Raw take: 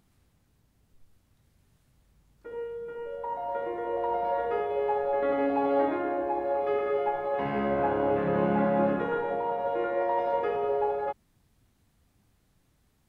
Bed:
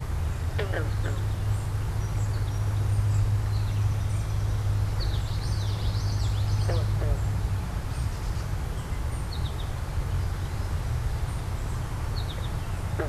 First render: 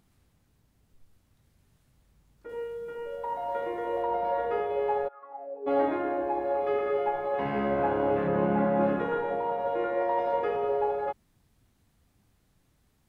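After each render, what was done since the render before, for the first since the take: 2.49–4.03 high shelf 3000 Hz +8.5 dB; 5.07–5.66 band-pass 1600 Hz -> 400 Hz, Q 16; 8.27–8.81 LPF 2500 Hz 6 dB/oct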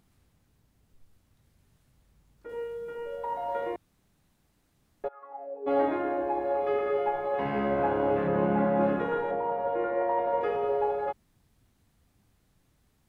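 3.76–5.04 room tone; 9.31–10.41 LPF 2300 Hz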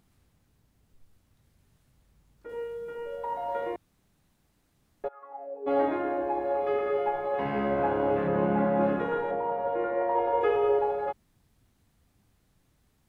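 10.15–10.79 comb 2.4 ms, depth 86%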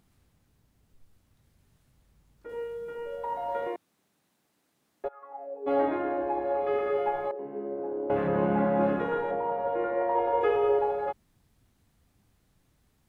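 3.67–5.05 HPF 240 Hz; 5.76–6.73 air absorption 68 m; 7.31–8.1 band-pass 380 Hz, Q 3.7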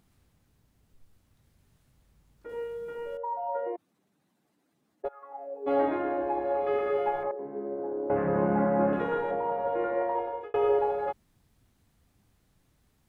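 3.17–5.05 spectral contrast raised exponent 1.6; 7.23–8.93 LPF 2100 Hz 24 dB/oct; 9.97–10.54 fade out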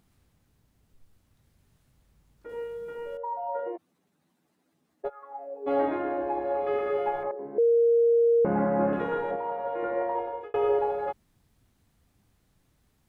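3.58–5.39 doubler 12 ms -6.5 dB; 7.58–8.45 bleep 467 Hz -17.5 dBFS; 9.36–9.83 low shelf 400 Hz -7.5 dB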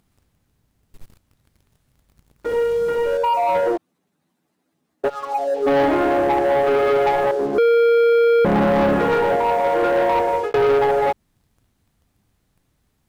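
in parallel at +2 dB: compressor, threshold -33 dBFS, peak gain reduction 12.5 dB; on the sum: sample leveller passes 3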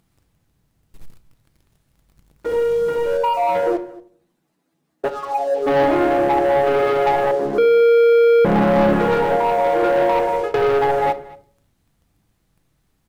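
echo 0.229 s -21 dB; shoebox room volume 690 m³, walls furnished, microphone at 0.68 m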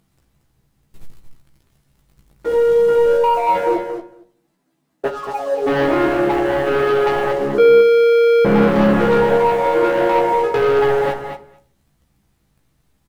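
doubler 15 ms -4 dB; echo 0.228 s -8 dB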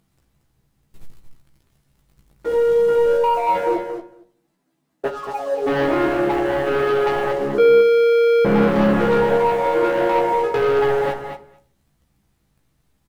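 gain -2.5 dB

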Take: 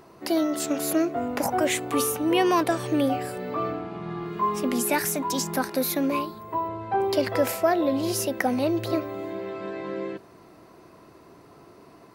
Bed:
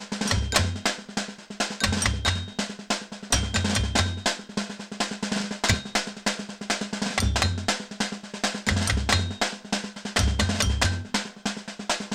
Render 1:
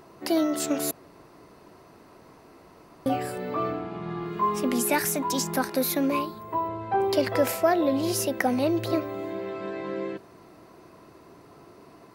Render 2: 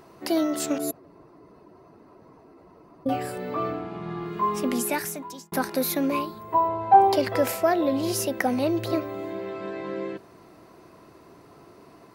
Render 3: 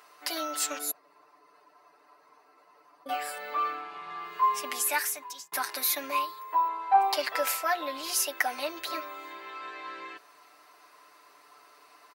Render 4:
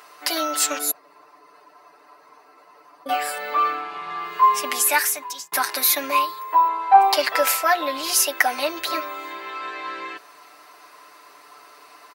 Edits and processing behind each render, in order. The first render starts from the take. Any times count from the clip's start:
0.91–3.06 room tone
0.78–3.09 spectral contrast raised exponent 1.5; 4.7–5.52 fade out; 6.54–7.16 bell 800 Hz +12.5 dB 0.65 oct
HPF 1100 Hz 12 dB/oct; comb 6.8 ms, depth 81%
gain +9 dB

